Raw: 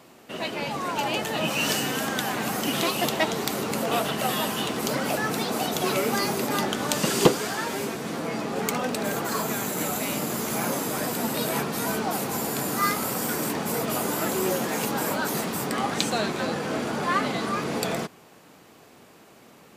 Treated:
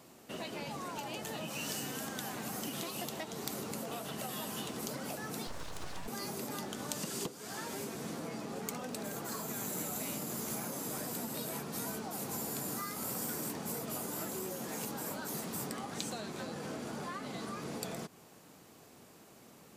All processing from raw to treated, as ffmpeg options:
ffmpeg -i in.wav -filter_complex "[0:a]asettb=1/sr,asplit=3[link_01][link_02][link_03];[link_01]atrim=end=5.474[link_04];[link_02]atrim=start=5.47:end=6.08,asetpts=PTS-STARTPTS,afade=type=in:duration=0.004:curve=qsin,afade=type=out:start_time=0.606:duration=0.004:curve=qsin,acrossover=split=9200[link_05][link_06];[link_06]acompressor=threshold=-51dB:ratio=4:attack=1:release=60[link_07];[link_05][link_07]amix=inputs=2:normalize=0,highshelf=frequency=5500:gain=-8.5,aeval=exprs='abs(val(0))':channel_layout=same[link_08];[link_03]atrim=start=6.076[link_09];[link_04][link_08]acrossfade=duration=0.004:curve1=hsin:curve2=qsin[link_10];[link_10][link_09]acrossfade=duration=0.004:curve1=qsin:curve2=hsin,highshelf=frequency=2900:gain=-9.5,acompressor=threshold=-32dB:ratio=16,bass=frequency=250:gain=3,treble=frequency=4000:gain=14,volume=-6.5dB" out.wav

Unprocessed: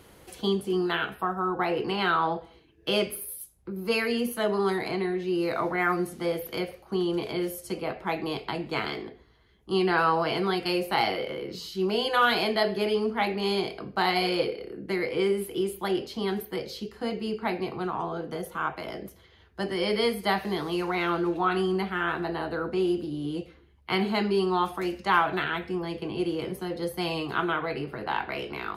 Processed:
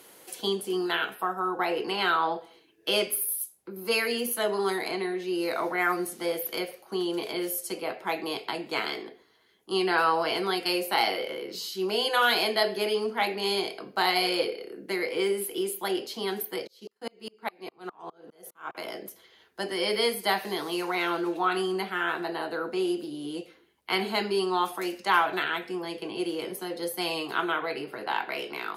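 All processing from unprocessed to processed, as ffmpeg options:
ffmpeg -i in.wav -filter_complex "[0:a]asettb=1/sr,asplit=3[link_01][link_02][link_03];[link_01]atrim=end=16.674[link_04];[link_02]atrim=start=16.67:end=18.75,asetpts=PTS-STARTPTS,afade=type=in:duration=0.004:curve=qsin,afade=type=out:start_time=2.076:duration=0.004:curve=qsin,agate=range=-33dB:threshold=-41dB:ratio=3:release=100:detection=peak,aeval=exprs='val(0)*pow(10,-36*if(lt(mod(-4.9*n/s,1),2*abs(-4.9)/1000),1-mod(-4.9*n/s,1)/(2*abs(-4.9)/1000),(mod(-4.9*n/s,1)-2*abs(-4.9)/1000)/(1-2*abs(-4.9)/1000))/20)':channel_layout=same[link_05];[link_03]atrim=start=18.746[link_06];[link_04][link_05]acrossfade=duration=0.004:curve1=hsin:curve2=qsin[link_07];[link_07][link_06]acrossfade=duration=0.004:curve1=qsin:curve2=hsin,highpass=300,aemphasis=mode=production:type=cd,bandreject=frequency=1200:width=26" out.wav

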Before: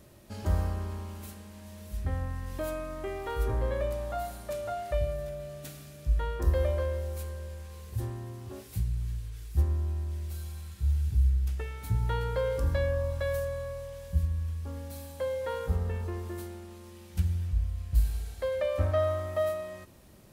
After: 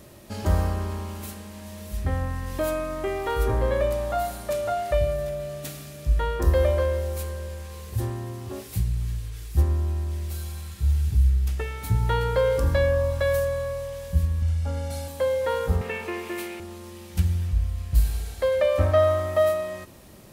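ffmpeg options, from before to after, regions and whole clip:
ffmpeg -i in.wav -filter_complex "[0:a]asettb=1/sr,asplit=3[link_01][link_02][link_03];[link_01]atrim=end=14.424[link_04];[link_02]atrim=start=14.42:end=15.08,asetpts=PTS-STARTPTS,afade=type=in:duration=0.004:curve=qsin,afade=type=out:start_time=0.656:duration=0.004:curve=qsin,lowpass=9300,aecho=1:1:1.4:0.89,atrim=end_sample=29106[link_05];[link_03]atrim=start=15.076[link_06];[link_04][link_05]acrossfade=duration=0.004:curve1=hsin:curve2=qsin[link_07];[link_07][link_06]acrossfade=duration=0.004:curve1=qsin:curve2=hsin,asettb=1/sr,asplit=3[link_08][link_09][link_10];[link_08]atrim=end=15.814[link_11];[link_09]atrim=start=15.81:end=16.6,asetpts=PTS-STARTPTS,afade=type=in:duration=0.004:curve=qsin,afade=type=out:start_time=0.786:duration=0.004:curve=qsin,highpass=240,equalizer=frequency=2400:width_type=o:width=0.7:gain=14.5[link_12];[link_10]atrim=start=16.596[link_13];[link_11][link_12]acrossfade=duration=0.004:curve1=hsin:curve2=qsin[link_14];[link_14][link_13]acrossfade=duration=0.004:curve1=qsin:curve2=hsin,lowshelf=frequency=130:gain=-4.5,bandreject=frequency=1500:width=28,volume=8.5dB" out.wav

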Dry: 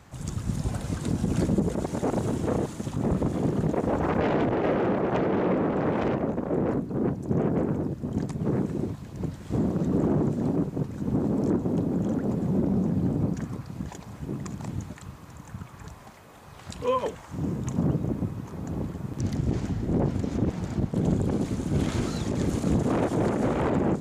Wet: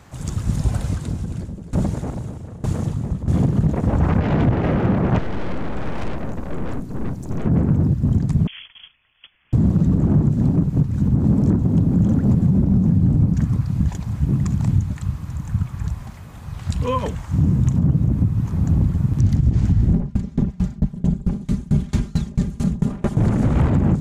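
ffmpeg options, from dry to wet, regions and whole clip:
ffmpeg -i in.wav -filter_complex "[0:a]asettb=1/sr,asplit=3[link_01][link_02][link_03];[link_01]atrim=end=0.824[link_04];[link_02]atrim=start=0.82:end=3.28,asetpts=PTS-STARTPTS,afade=type=in:duration=0.004:curve=qsin,afade=type=out:start_time=2.456:duration=0.004:curve=qsin,aecho=1:1:271:0.562,atrim=end_sample=108486,aeval=exprs='val(0)*pow(10,-23*if(lt(mod(1.1*n/s,1),2*abs(1.1)/1000),1-mod(1.1*n/s,1)/(2*abs(1.1)/1000),(mod(1.1*n/s,1)-2*abs(1.1)/1000)/(1-2*abs(1.1)/1000))/20)':channel_layout=same[link_05];[link_03]atrim=start=3.276[link_06];[link_04][link_05]acrossfade=duration=0.004:curve1=hsin:curve2=qsin[link_07];[link_07][link_06]acrossfade=duration=0.004:curve1=qsin:curve2=hsin,asettb=1/sr,asplit=3[link_08][link_09][link_10];[link_08]atrim=end=5.184[link_11];[link_09]atrim=start=5.18:end=7.46,asetpts=PTS-STARTPTS,afade=type=in:duration=0.004:curve=qsin,afade=type=out:start_time=2.276:duration=0.004:curve=qsin,bass=frequency=250:gain=-12,treble=frequency=4000:gain=7,aeval=exprs='(tanh(35.5*val(0)+0.4)-tanh(0.4))/35.5':channel_layout=same[link_12];[link_10]atrim=start=7.456[link_13];[link_11][link_12]acrossfade=duration=0.004:curve1=hsin:curve2=qsin[link_14];[link_14][link_13]acrossfade=duration=0.004:curve1=qsin:curve2=hsin,asettb=1/sr,asplit=3[link_15][link_16][link_17];[link_15]atrim=end=8.474[link_18];[link_16]atrim=start=8.47:end=9.53,asetpts=PTS-STARTPTS,afade=type=in:duration=0.004:curve=qsin,afade=type=out:start_time=1.056:duration=0.004:curve=qsin,highpass=930,agate=range=-13dB:threshold=-49dB:ratio=16:release=100:detection=peak,lowpass=frequency=3100:width_type=q:width=0.5098,lowpass=frequency=3100:width_type=q:width=0.6013,lowpass=frequency=3100:width_type=q:width=0.9,lowpass=frequency=3100:width_type=q:width=2.563,afreqshift=-3600[link_19];[link_17]atrim=start=9.526[link_20];[link_18][link_19]acrossfade=duration=0.004:curve1=hsin:curve2=qsin[link_21];[link_21][link_20]acrossfade=duration=0.004:curve1=qsin:curve2=hsin,asettb=1/sr,asplit=3[link_22][link_23][link_24];[link_22]atrim=end=19.934[link_25];[link_23]atrim=start=19.93:end=23.17,asetpts=PTS-STARTPTS,afade=type=in:duration=0.004:curve=qsin,afade=type=out:start_time=3.236:duration=0.004:curve=qsin,aecho=1:1:5:0.82,atrim=end_sample=142884,aeval=exprs='val(0)*pow(10,-29*if(lt(mod(4.5*n/s,1),2*abs(4.5)/1000),1-mod(4.5*n/s,1)/(2*abs(4.5)/1000),(mod(4.5*n/s,1)-2*abs(4.5)/1000)/(1-2*abs(4.5)/1000))/20)':channel_layout=same[link_26];[link_24]atrim=start=23.166[link_27];[link_25][link_26]acrossfade=duration=0.004:curve1=hsin:curve2=qsin[link_28];[link_28][link_27]acrossfade=duration=0.004:curve1=qsin:curve2=hsin,asubboost=boost=7.5:cutoff=150,alimiter=limit=-13dB:level=0:latency=1:release=194,volume=5dB" out.wav

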